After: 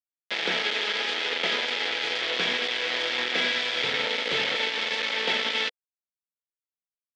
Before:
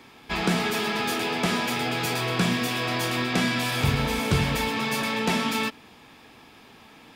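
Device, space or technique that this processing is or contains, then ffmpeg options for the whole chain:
hand-held game console: -af "acrusher=bits=3:mix=0:aa=0.000001,highpass=480,equalizer=frequency=490:width_type=q:width=4:gain=7,equalizer=frequency=730:width_type=q:width=4:gain=-4,equalizer=frequency=1100:width_type=q:width=4:gain=-8,equalizer=frequency=2000:width_type=q:width=4:gain=6,equalizer=frequency=3300:width_type=q:width=4:gain=7,lowpass=frequency=4600:width=0.5412,lowpass=frequency=4600:width=1.3066,volume=-2dB"

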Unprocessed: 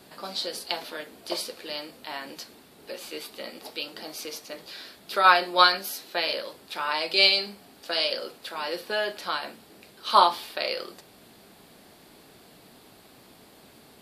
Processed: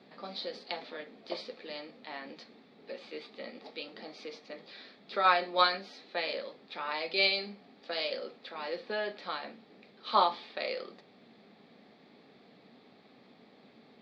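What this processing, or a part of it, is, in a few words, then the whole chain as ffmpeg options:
kitchen radio: -af "highpass=200,equalizer=frequency=220:width_type=q:width=4:gain=4,equalizer=frequency=340:width_type=q:width=4:gain=-6,equalizer=frequency=640:width_type=q:width=4:gain=-4,equalizer=frequency=980:width_type=q:width=4:gain=-8,equalizer=frequency=1500:width_type=q:width=4:gain=-9,equalizer=frequency=2900:width_type=q:width=4:gain=-10,lowpass=frequency=3600:width=0.5412,lowpass=frequency=3600:width=1.3066,volume=-1.5dB"

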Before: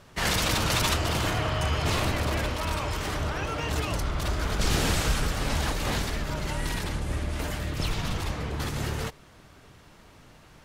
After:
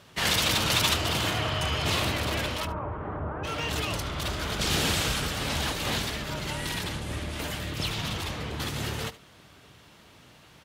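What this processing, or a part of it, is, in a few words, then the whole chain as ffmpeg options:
presence and air boost: -filter_complex "[0:a]asplit=3[link_01][link_02][link_03];[link_01]afade=type=out:start_time=2.65:duration=0.02[link_04];[link_02]lowpass=frequency=1300:width=0.5412,lowpass=frequency=1300:width=1.3066,afade=type=in:start_time=2.65:duration=0.02,afade=type=out:start_time=3.43:duration=0.02[link_05];[link_03]afade=type=in:start_time=3.43:duration=0.02[link_06];[link_04][link_05][link_06]amix=inputs=3:normalize=0,highpass=73,equalizer=frequency=3300:width_type=o:width=0.98:gain=6,highshelf=frequency=11000:gain=5.5,aecho=1:1:73:0.141,volume=-1.5dB"

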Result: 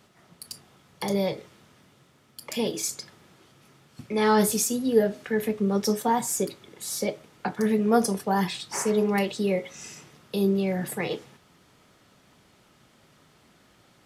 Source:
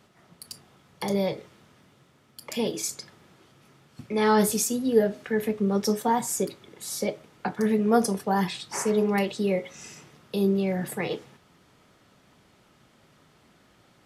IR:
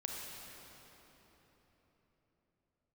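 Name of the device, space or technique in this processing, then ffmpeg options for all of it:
exciter from parts: -filter_complex "[0:a]asplit=2[link_01][link_02];[link_02]highpass=frequency=4500:poles=1,asoftclip=type=tanh:threshold=-37dB,volume=-6dB[link_03];[link_01][link_03]amix=inputs=2:normalize=0"

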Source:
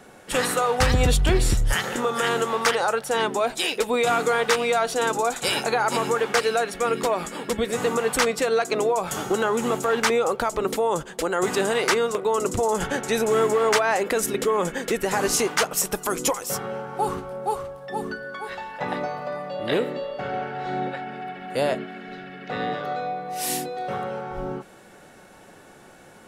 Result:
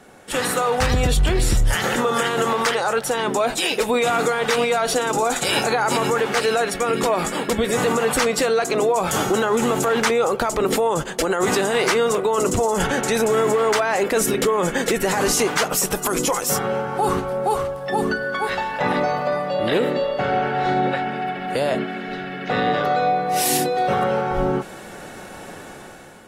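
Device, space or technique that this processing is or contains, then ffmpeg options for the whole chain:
low-bitrate web radio: -af "dynaudnorm=framelen=210:gausssize=7:maxgain=11dB,alimiter=limit=-11.5dB:level=0:latency=1:release=28" -ar 44100 -c:a aac -b:a 48k

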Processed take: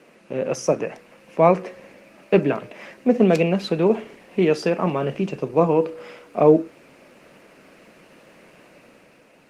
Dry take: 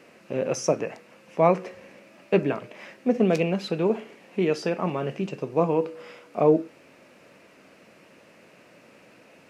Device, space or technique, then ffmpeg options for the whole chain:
video call: -af "highpass=frequency=110:width=0.5412,highpass=frequency=110:width=1.3066,dynaudnorm=framelen=110:gausssize=13:maxgain=4dB,volume=1.5dB" -ar 48000 -c:a libopus -b:a 24k

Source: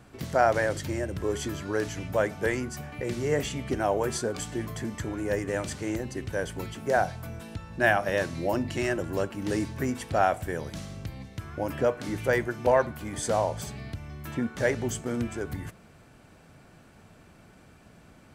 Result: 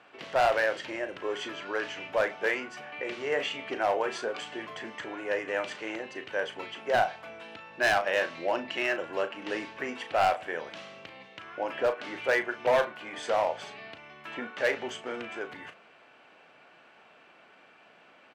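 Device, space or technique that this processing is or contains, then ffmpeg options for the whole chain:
megaphone: -filter_complex "[0:a]highpass=550,lowpass=3100,equalizer=frequency=2800:width_type=o:width=0.52:gain=7,asoftclip=type=hard:threshold=-21dB,asplit=2[link_01][link_02];[link_02]adelay=36,volume=-10dB[link_03];[link_01][link_03]amix=inputs=2:normalize=0,volume=2dB"

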